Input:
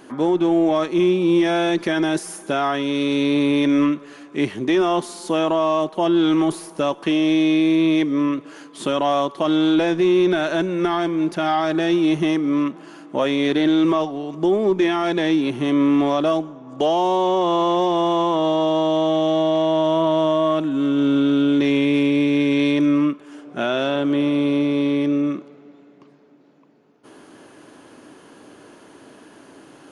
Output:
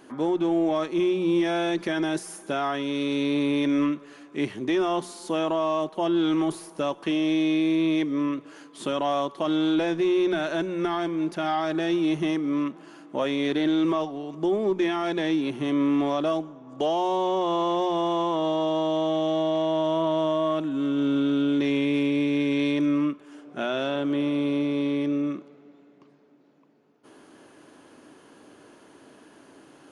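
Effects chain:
mains-hum notches 60/120/180 Hz
level −6 dB

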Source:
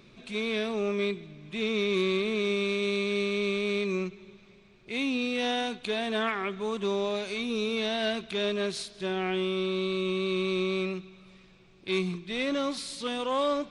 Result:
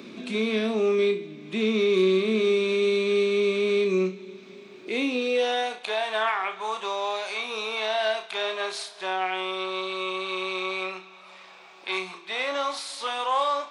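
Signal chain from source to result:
flutter between parallel walls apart 5.5 metres, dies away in 0.25 s
high-pass filter sweep 260 Hz → 820 Hz, 0:04.66–0:05.99
multiband upward and downward compressor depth 40%
level +1 dB

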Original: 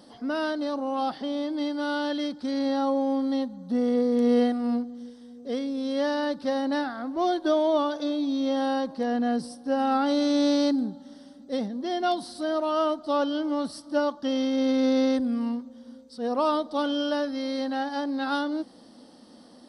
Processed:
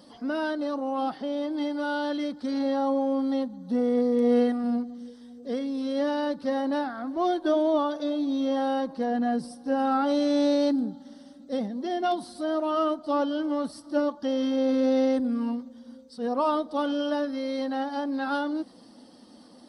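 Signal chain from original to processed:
spectral magnitudes quantised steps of 15 dB
dynamic equaliser 4,700 Hz, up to −5 dB, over −48 dBFS, Q 0.79

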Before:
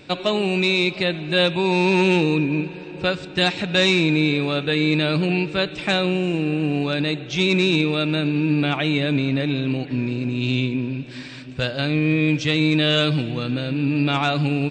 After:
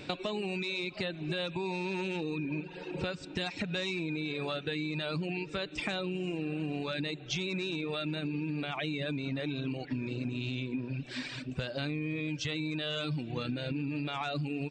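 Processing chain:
reverb reduction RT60 0.92 s
brickwall limiter −17 dBFS, peak gain reduction 9 dB
downward compressor 12 to 1, threshold −31 dBFS, peak gain reduction 11 dB

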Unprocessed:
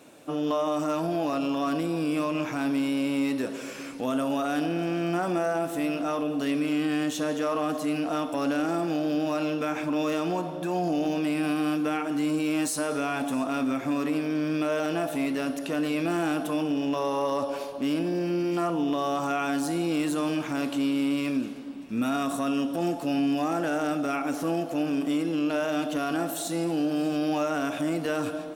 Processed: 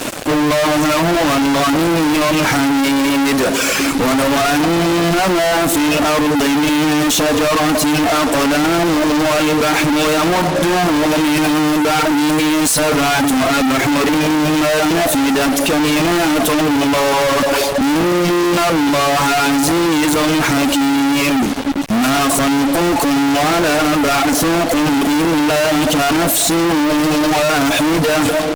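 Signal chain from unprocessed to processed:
reverb reduction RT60 1.3 s
fuzz pedal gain 53 dB, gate −52 dBFS

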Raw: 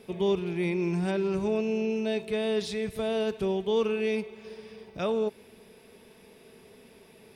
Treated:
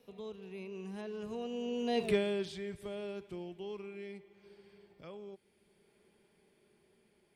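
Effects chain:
source passing by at 0:02.08, 30 m/s, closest 1.9 metres
multiband upward and downward compressor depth 40%
level +8.5 dB

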